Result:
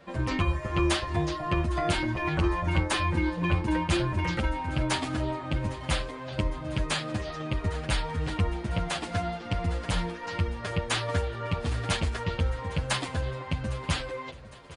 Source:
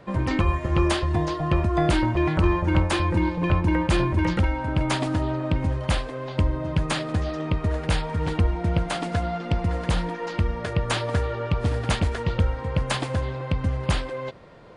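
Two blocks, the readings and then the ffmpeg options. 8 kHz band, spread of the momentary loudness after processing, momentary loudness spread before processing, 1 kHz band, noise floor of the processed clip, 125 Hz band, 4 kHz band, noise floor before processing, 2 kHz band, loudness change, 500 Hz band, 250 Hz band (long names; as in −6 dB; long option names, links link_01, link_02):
0.0 dB, 6 LU, 5 LU, −3.5 dB, −40 dBFS, −6.0 dB, −0.5 dB, −34 dBFS, −1.5 dB, −4.5 dB, −5.5 dB, −6.0 dB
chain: -filter_complex "[0:a]tiltshelf=frequency=1200:gain=-3,asplit=2[link_01][link_02];[link_02]aecho=0:1:808|1616|2424|3232:0.112|0.0595|0.0315|0.0167[link_03];[link_01][link_03]amix=inputs=2:normalize=0,asplit=2[link_04][link_05];[link_05]adelay=8.2,afreqshift=-2.6[link_06];[link_04][link_06]amix=inputs=2:normalize=1"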